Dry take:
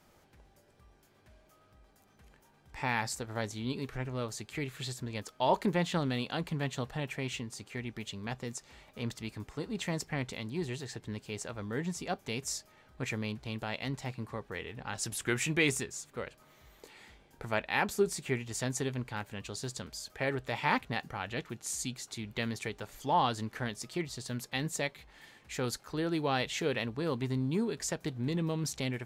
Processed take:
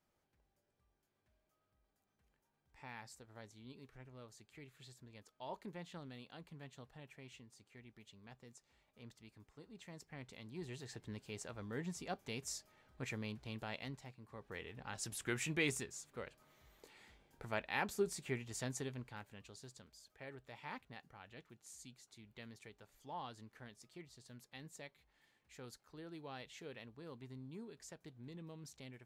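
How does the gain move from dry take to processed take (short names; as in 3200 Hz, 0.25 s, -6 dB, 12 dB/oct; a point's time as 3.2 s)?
9.91 s -19.5 dB
10.93 s -8 dB
13.78 s -8 dB
14.2 s -18.5 dB
14.51 s -8 dB
18.65 s -8 dB
19.93 s -19 dB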